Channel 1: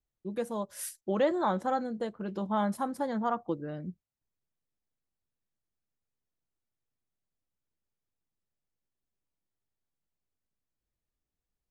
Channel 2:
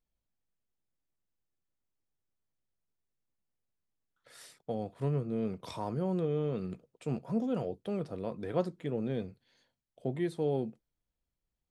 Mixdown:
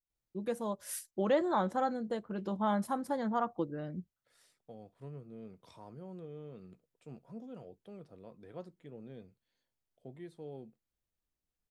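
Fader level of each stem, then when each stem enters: −2.0, −15.0 decibels; 0.10, 0.00 seconds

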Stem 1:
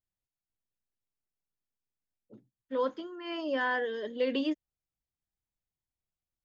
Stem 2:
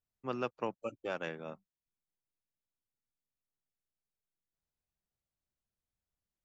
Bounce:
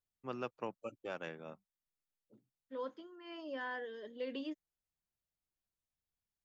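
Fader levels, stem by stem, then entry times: −11.5, −5.0 decibels; 0.00, 0.00 seconds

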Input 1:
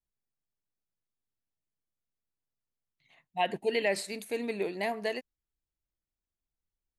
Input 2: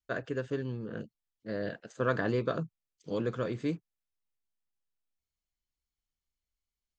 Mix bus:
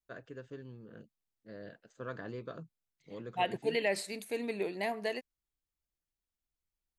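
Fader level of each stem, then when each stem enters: −2.5, −12.5 decibels; 0.00, 0.00 seconds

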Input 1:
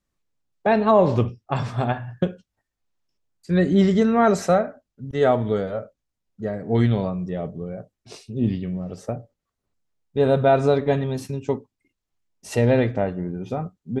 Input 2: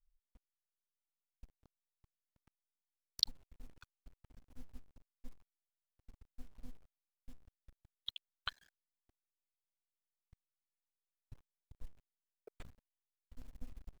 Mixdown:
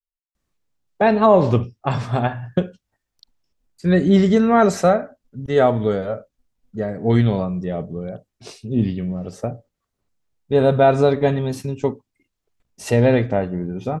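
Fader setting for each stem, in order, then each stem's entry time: +3.0, −19.0 decibels; 0.35, 0.00 seconds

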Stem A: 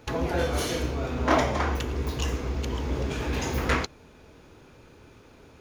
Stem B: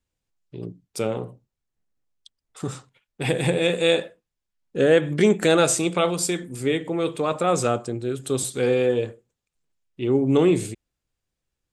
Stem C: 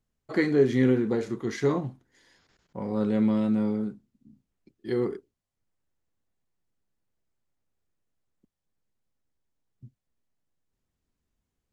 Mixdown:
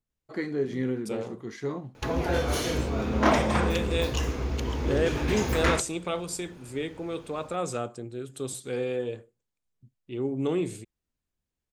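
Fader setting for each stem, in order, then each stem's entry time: 0.0, −9.5, −7.5 decibels; 1.95, 0.10, 0.00 seconds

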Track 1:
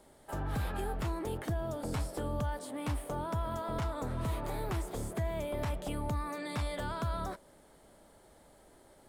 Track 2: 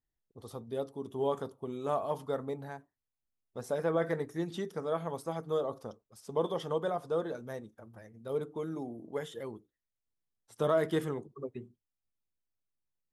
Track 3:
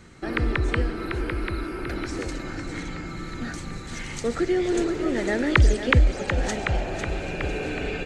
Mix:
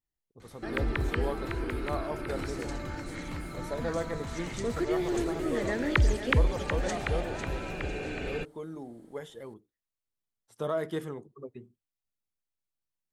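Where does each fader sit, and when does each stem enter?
−6.5, −3.0, −6.5 decibels; 0.45, 0.00, 0.40 seconds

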